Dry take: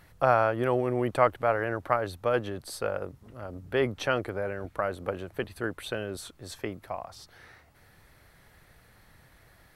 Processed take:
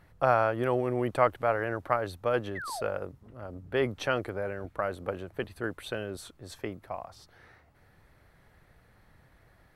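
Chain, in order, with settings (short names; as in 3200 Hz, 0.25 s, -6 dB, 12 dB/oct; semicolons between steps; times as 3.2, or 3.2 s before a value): painted sound fall, 2.55–2.83, 560–2100 Hz -36 dBFS; mismatched tape noise reduction decoder only; gain -1.5 dB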